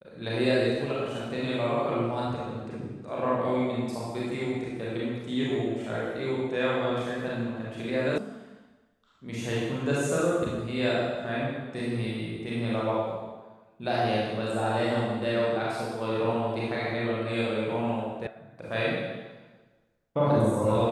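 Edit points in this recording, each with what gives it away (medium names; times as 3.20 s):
8.18 s: sound stops dead
18.27 s: sound stops dead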